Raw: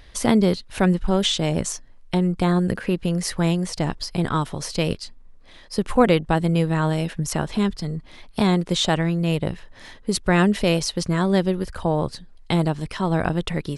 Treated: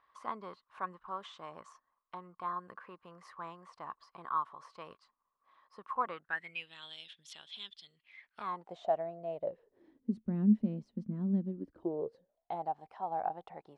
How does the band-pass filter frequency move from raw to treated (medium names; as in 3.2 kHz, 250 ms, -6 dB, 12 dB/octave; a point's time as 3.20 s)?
band-pass filter, Q 11
6.09 s 1.1 kHz
6.74 s 3.4 kHz
7.92 s 3.4 kHz
8.75 s 680 Hz
9.35 s 680 Hz
10.16 s 220 Hz
11.43 s 220 Hz
12.56 s 780 Hz